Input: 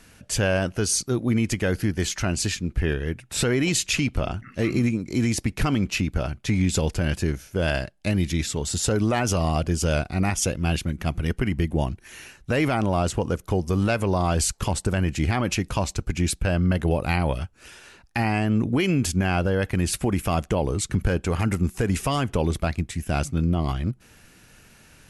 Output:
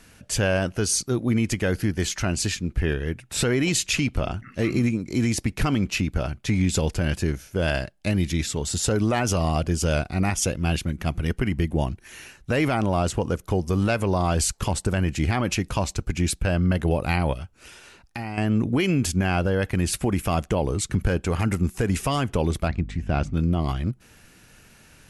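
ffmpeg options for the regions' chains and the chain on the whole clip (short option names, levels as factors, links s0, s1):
-filter_complex "[0:a]asettb=1/sr,asplit=3[s0][s1][s2];[s0]atrim=end=17.334[s3];[s1]atrim=start=17.33:end=18.38,asetpts=PTS-STARTPTS,afade=t=in:d=0.004:c=qsin,afade=t=out:st=1.046:d=0.004:c=qsin,bandreject=f=1700:w=15,acompressor=threshold=0.02:ratio=2:attack=3.2:release=140:knee=1:detection=peak[s4];[s2]atrim=start=18.376[s5];[s3][s4]acrossfade=d=0.004:c1=hsin:c2=qsin[s6];[s6][s5]acrossfade=d=0.004:c1=qsin:c2=hsin,asettb=1/sr,asplit=3[s7][s8][s9];[s7]atrim=end=22.684[s10];[s8]atrim=start=22.68:end=23.34,asetpts=PTS-STARTPTS,afade=t=in:d=0.004:c=qsin,afade=t=out:st=0.656:d=0.004:c=qsin,lowpass=7400,aemphasis=mode=reproduction:type=75fm,aeval=exprs='val(0)+0.0178*(sin(2*PI*50*n/s)+sin(2*PI*2*50*n/s)/2+sin(2*PI*3*50*n/s)/3+sin(2*PI*4*50*n/s)/4+sin(2*PI*5*50*n/s)/5)':c=same[s11];[s9]atrim=start=23.336[s12];[s10][s11]acrossfade=d=0.004:c1=hsin:c2=qsin[s13];[s13][s12]acrossfade=d=0.004:c1=qsin:c2=hsin"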